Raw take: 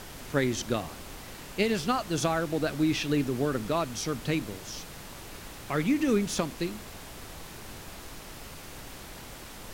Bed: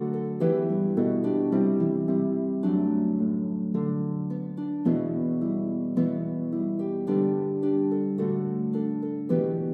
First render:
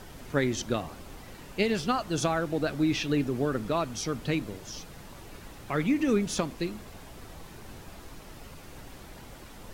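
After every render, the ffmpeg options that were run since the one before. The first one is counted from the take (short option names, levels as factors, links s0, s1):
-af "afftdn=nr=7:nf=-45"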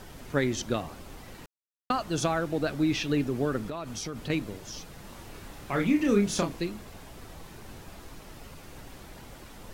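-filter_complex "[0:a]asettb=1/sr,asplit=3[s0][s1][s2];[s0]atrim=end=3.684[s3];[s1]atrim=start=3.68:end=4.3,asetpts=PTS-STARTPTS,afade=t=in:d=0.004:c=qsin,afade=t=out:st=0.616:d=0.004:c=qsin,acompressor=threshold=0.0282:ratio=10:attack=3.2:release=140:knee=1:detection=peak[s4];[s2]atrim=start=4.296[s5];[s3][s4]acrossfade=d=0.004:c1=hsin:c2=qsin[s6];[s6][s5]acrossfade=d=0.004:c1=qsin:c2=hsin,asettb=1/sr,asplit=3[s7][s8][s9];[s7]atrim=end=5.014[s10];[s8]atrim=start=5.01:end=6.6,asetpts=PTS-STARTPTS,afade=t=in:d=0.004:c=qsin,afade=t=out:st=1.586:d=0.004:c=qsin,asplit=2[s11][s12];[s12]adelay=30,volume=0.596[s13];[s11][s13]amix=inputs=2:normalize=0,atrim=end_sample=70119[s14];[s9]atrim=start=6.596[s15];[s10][s14]acrossfade=d=0.004:c1=hsin:c2=qsin[s16];[s16][s15]acrossfade=d=0.004:c1=qsin:c2=hsin,asplit=3[s17][s18][s19];[s17]atrim=end=1.46,asetpts=PTS-STARTPTS,afade=t=out:st=1.456:d=0.004:c=hsin[s20];[s18]atrim=start=1.46:end=1.9,asetpts=PTS-STARTPTS,volume=0[s21];[s19]atrim=start=1.9,asetpts=PTS-STARTPTS,afade=t=in:d=0.004:c=hsin[s22];[s20][s21][s22]concat=n=3:v=0:a=1"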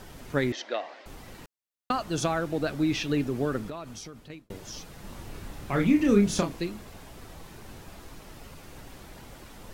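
-filter_complex "[0:a]asettb=1/sr,asplit=3[s0][s1][s2];[s0]atrim=end=0.524[s3];[s1]atrim=start=0.52:end=1.06,asetpts=PTS-STARTPTS,afade=t=in:d=0.004:c=qsin,afade=t=out:st=0.536:d=0.004:c=qsin,highpass=f=380:w=0.5412,highpass=f=380:w=1.3066,equalizer=f=400:t=q:w=4:g=-6,equalizer=f=640:t=q:w=4:g=5,equalizer=f=1200:t=q:w=4:g=-4,equalizer=f=1900:t=q:w=4:g=9,lowpass=f=5000:w=0.5412,lowpass=f=5000:w=1.3066[s4];[s2]atrim=start=1.056[s5];[s3][s4]acrossfade=d=0.004:c1=hsin:c2=qsin[s6];[s6][s5]acrossfade=d=0.004:c1=qsin:c2=hsin,asettb=1/sr,asplit=3[s7][s8][s9];[s7]atrim=end=5.034[s10];[s8]atrim=start=5.03:end=6.41,asetpts=PTS-STARTPTS,afade=t=in:d=0.004:c=qsin,afade=t=out:st=1.376:d=0.004:c=qsin,lowshelf=f=250:g=6[s11];[s9]atrim=start=6.406[s12];[s10][s11]acrossfade=d=0.004:c1=hsin:c2=qsin[s13];[s13][s12]acrossfade=d=0.004:c1=qsin:c2=hsin,asplit=2[s14][s15];[s14]atrim=end=4.5,asetpts=PTS-STARTPTS,afade=t=out:st=3.56:d=0.94[s16];[s15]atrim=start=4.5,asetpts=PTS-STARTPTS,afade=t=in:d=0.004:c=hsin[s17];[s16][s17]concat=n=2:v=0:a=1"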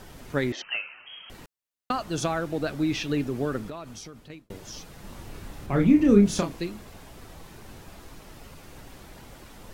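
-filter_complex "[0:a]asettb=1/sr,asplit=3[s0][s1][s2];[s0]atrim=end=0.624[s3];[s1]atrim=start=0.62:end=1.3,asetpts=PTS-STARTPTS,afade=t=in:d=0.004:c=qsin,afade=t=out:st=0.676:d=0.004:c=qsin,lowpass=f=2800:t=q:w=0.5098,lowpass=f=2800:t=q:w=0.6013,lowpass=f=2800:t=q:w=0.9,lowpass=f=2800:t=q:w=2.563,afreqshift=-3300[s4];[s2]atrim=start=1.296[s5];[s3][s4]acrossfade=d=0.004:c1=hsin:c2=qsin[s6];[s6][s5]acrossfade=d=0.004:c1=qsin:c2=hsin,asettb=1/sr,asplit=3[s7][s8][s9];[s7]atrim=end=5.664[s10];[s8]atrim=start=5.66:end=6.26,asetpts=PTS-STARTPTS,afade=t=in:d=0.004:c=qsin,afade=t=out:st=0.596:d=0.004:c=qsin,tiltshelf=f=900:g=4.5[s11];[s9]atrim=start=6.256[s12];[s10][s11]acrossfade=d=0.004:c1=hsin:c2=qsin[s13];[s13][s12]acrossfade=d=0.004:c1=qsin:c2=hsin"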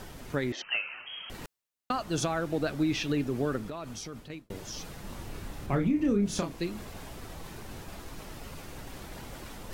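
-af "areverse,acompressor=mode=upward:threshold=0.0158:ratio=2.5,areverse,alimiter=limit=0.119:level=0:latency=1:release=333"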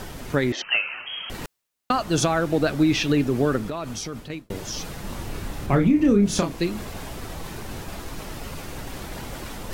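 -af "volume=2.66"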